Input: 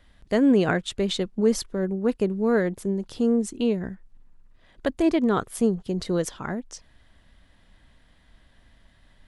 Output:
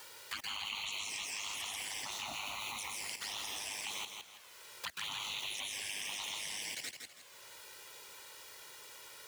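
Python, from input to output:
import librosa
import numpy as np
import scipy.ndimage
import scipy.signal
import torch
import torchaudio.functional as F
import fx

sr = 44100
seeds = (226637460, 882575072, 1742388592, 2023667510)

p1 = fx.hpss(x, sr, part='harmonic', gain_db=-15)
p2 = fx.peak_eq(p1, sr, hz=490.0, db=12.5, octaves=0.55)
p3 = fx.rev_freeverb(p2, sr, rt60_s=2.1, hf_ratio=0.85, predelay_ms=90, drr_db=-3.5)
p4 = p3 * np.sin(2.0 * np.pi * 51.0 * np.arange(len(p3)) / sr)
p5 = fx.spec_gate(p4, sr, threshold_db=-30, keep='weak')
p6 = fx.quant_dither(p5, sr, seeds[0], bits=8, dither='triangular')
p7 = p5 + F.gain(torch.from_numpy(p6), -3.0).numpy()
p8 = fx.level_steps(p7, sr, step_db=24)
p9 = fx.highpass(p8, sr, hz=320.0, slope=6)
p10 = fx.high_shelf(p9, sr, hz=7100.0, db=-9.0)
p11 = fx.env_flanger(p10, sr, rest_ms=2.3, full_db=-46.5)
p12 = p11 + fx.echo_feedback(p11, sr, ms=163, feedback_pct=21, wet_db=-8.0, dry=0)
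p13 = fx.band_squash(p12, sr, depth_pct=70)
y = F.gain(torch.from_numpy(p13), 12.0).numpy()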